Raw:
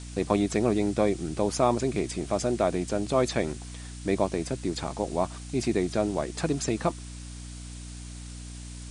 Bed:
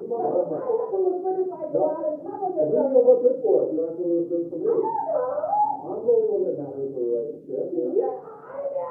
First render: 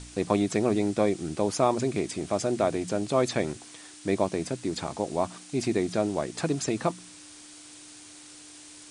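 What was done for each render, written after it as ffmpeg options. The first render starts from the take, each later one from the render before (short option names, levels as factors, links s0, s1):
-af "bandreject=f=60:t=h:w=4,bandreject=f=120:t=h:w=4,bandreject=f=180:t=h:w=4,bandreject=f=240:t=h:w=4"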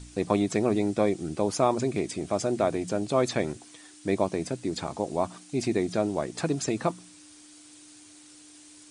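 -af "afftdn=nr=6:nf=-48"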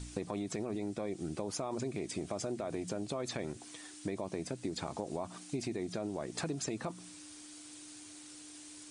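-af "alimiter=limit=0.119:level=0:latency=1:release=28,acompressor=threshold=0.02:ratio=6"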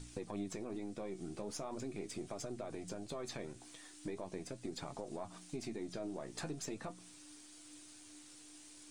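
-af "aeval=exprs='if(lt(val(0),0),0.708*val(0),val(0))':c=same,flanger=delay=6.7:depth=9.7:regen=54:speed=0.41:shape=triangular"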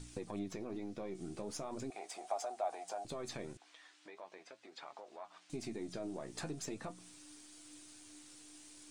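-filter_complex "[0:a]asettb=1/sr,asplit=3[s0][s1][s2];[s0]atrim=end=0.394[s3];[s1]atrim=start=0.39:end=1.15,asetpts=PTS-STARTPTS,afade=t=in:d=0.004:c=qsin,afade=t=out:st=0.756:d=0.004:c=qsin,equalizer=f=8400:w=2.6:g=-11.5[s4];[s2]atrim=start=1.146[s5];[s3][s4]acrossfade=d=0.004:c1=hsin:c2=qsin[s6];[s6][s5]acrossfade=d=0.004:c1=qsin:c2=hsin,asettb=1/sr,asplit=3[s7][s8][s9];[s7]atrim=end=1.904[s10];[s8]atrim=start=1.9:end=3.05,asetpts=PTS-STARTPTS,afade=t=in:d=0.004:c=qsin,afade=t=out:st=1.146:d=0.004:c=qsin,highpass=f=750:t=q:w=7.2[s11];[s9]atrim=start=3.046[s12];[s10][s11]acrossfade=d=0.004:c1=hsin:c2=qsin[s13];[s13][s12]acrossfade=d=0.004:c1=qsin:c2=hsin,asettb=1/sr,asplit=3[s14][s15][s16];[s14]atrim=end=3.574[s17];[s15]atrim=start=3.57:end=5.5,asetpts=PTS-STARTPTS,afade=t=in:d=0.004:c=qsin,afade=t=out:st=1.926:d=0.004:c=qsin,highpass=770,lowpass=3600[s18];[s16]atrim=start=5.496[s19];[s17][s18]acrossfade=d=0.004:c1=hsin:c2=qsin[s20];[s20][s19]acrossfade=d=0.004:c1=qsin:c2=hsin"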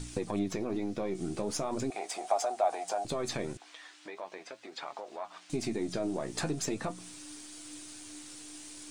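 -af "volume=2.99"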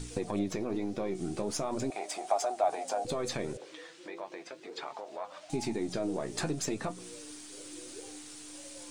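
-filter_complex "[1:a]volume=0.0473[s0];[0:a][s0]amix=inputs=2:normalize=0"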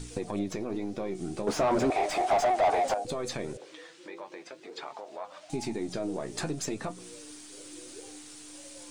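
-filter_complex "[0:a]asettb=1/sr,asplit=3[s0][s1][s2];[s0]atrim=end=1.474[s3];[s1]atrim=start=1.47:end=2.94,asetpts=PTS-STARTPTS,afade=t=in:d=0.004:c=qsin,afade=t=out:st=1.466:d=0.004:c=qsin,asplit=2[s4][s5];[s5]highpass=f=720:p=1,volume=22.4,asoftclip=type=tanh:threshold=0.168[s6];[s4][s6]amix=inputs=2:normalize=0,lowpass=f=1200:p=1,volume=0.501[s7];[s2]atrim=start=2.936[s8];[s3][s7]acrossfade=d=0.004:c1=hsin:c2=qsin[s9];[s9][s8]acrossfade=d=0.004:c1=qsin:c2=hsin,asettb=1/sr,asplit=3[s10][s11][s12];[s10]atrim=end=3.974[s13];[s11]atrim=start=3.97:end=4.43,asetpts=PTS-STARTPTS,afade=t=in:d=0.004:c=qsin,afade=t=out:st=0.456:d=0.004:c=qsin,asuperstop=centerf=690:order=4:qfactor=7.3[s14];[s12]atrim=start=4.426[s15];[s13][s14]acrossfade=d=0.004:c1=hsin:c2=qsin[s16];[s16][s15]acrossfade=d=0.004:c1=qsin:c2=hsin"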